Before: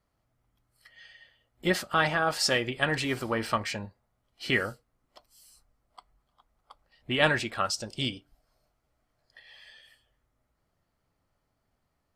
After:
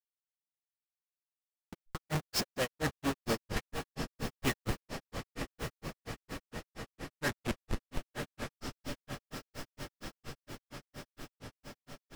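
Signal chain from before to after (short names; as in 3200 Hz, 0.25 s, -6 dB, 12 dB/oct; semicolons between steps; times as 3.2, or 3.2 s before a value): Schmitt trigger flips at -30.5 dBFS; diffused feedback echo 0.95 s, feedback 72%, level -6.5 dB; grains 0.123 s, grains 4.3/s, pitch spread up and down by 0 st; gain +5 dB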